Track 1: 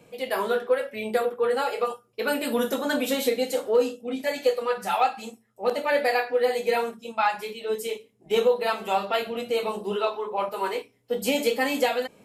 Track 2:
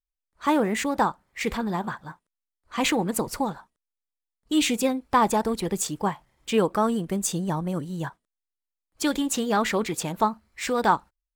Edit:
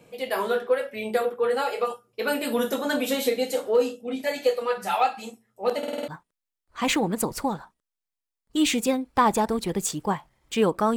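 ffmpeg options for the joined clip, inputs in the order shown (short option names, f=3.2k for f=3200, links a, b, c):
-filter_complex "[0:a]apad=whole_dur=10.96,atrim=end=10.96,asplit=6[a][b][c][d][e][f];[a]atrim=end=5.832[g];[b]atrim=start=5.778:end=5.832[h];[c]atrim=start=5.778:end=5.832[i];[d]atrim=start=5.778:end=5.832[j];[e]atrim=start=5.778:end=5.832[k];[f]atrim=start=5.778:end=5.832[l];[1:a]atrim=start=2.038:end=6.92[m];[g][h]acrossfade=d=0.004:c1=hsin:c2=hsin[n];[n][i]acrossfade=d=0.004:c1=hsin:c2=hsin[o];[o][j]acrossfade=d=0.004:c1=hsin:c2=hsin[p];[p][k]acrossfade=d=0.004:c1=hsin:c2=hsin[q];[q][l]acrossfade=d=0.004:c1=hsin:c2=hsin[r];[r][m]acrossfade=d=0.004:c1=hsin:c2=hsin"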